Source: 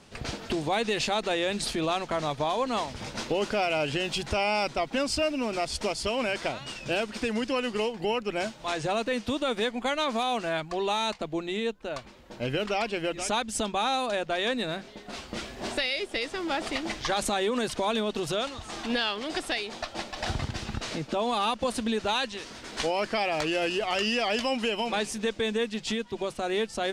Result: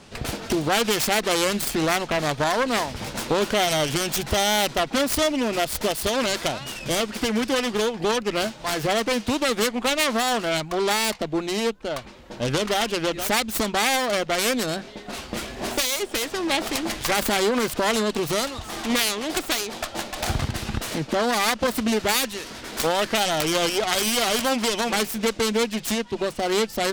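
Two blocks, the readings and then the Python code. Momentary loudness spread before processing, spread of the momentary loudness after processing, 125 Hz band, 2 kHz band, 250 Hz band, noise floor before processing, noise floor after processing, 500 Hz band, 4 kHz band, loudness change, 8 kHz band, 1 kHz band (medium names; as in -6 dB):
7 LU, 8 LU, +6.0 dB, +5.5 dB, +5.5 dB, -47 dBFS, -41 dBFS, +4.5 dB, +6.5 dB, +5.5 dB, +11.5 dB, +4.5 dB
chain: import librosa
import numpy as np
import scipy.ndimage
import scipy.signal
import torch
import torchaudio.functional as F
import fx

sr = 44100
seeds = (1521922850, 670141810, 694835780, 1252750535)

y = fx.self_delay(x, sr, depth_ms=0.36)
y = y * librosa.db_to_amplitude(6.5)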